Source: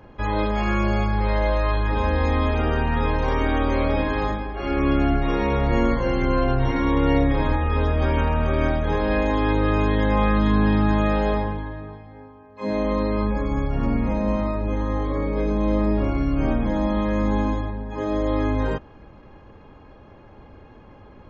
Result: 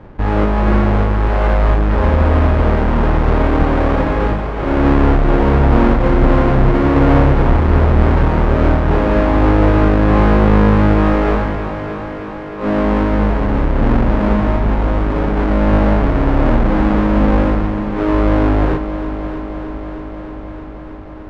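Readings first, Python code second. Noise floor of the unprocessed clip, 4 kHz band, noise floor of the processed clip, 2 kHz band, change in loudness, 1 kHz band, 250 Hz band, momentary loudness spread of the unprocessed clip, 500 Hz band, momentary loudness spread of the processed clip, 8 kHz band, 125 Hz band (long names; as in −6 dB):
−47 dBFS, +3.0 dB, −28 dBFS, +6.0 dB, +8.0 dB, +7.0 dB, +8.0 dB, 6 LU, +7.5 dB, 13 LU, can't be measured, +9.5 dB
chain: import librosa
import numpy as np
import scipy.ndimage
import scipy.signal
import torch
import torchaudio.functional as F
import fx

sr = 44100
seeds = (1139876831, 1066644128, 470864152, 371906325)

p1 = fx.halfwave_hold(x, sr)
p2 = scipy.signal.sosfilt(scipy.signal.butter(2, 1600.0, 'lowpass', fs=sr, output='sos'), p1)
p3 = p2 + fx.echo_heads(p2, sr, ms=311, heads='first and second', feedback_pct=73, wet_db=-14.5, dry=0)
y = p3 * 10.0 ** (4.0 / 20.0)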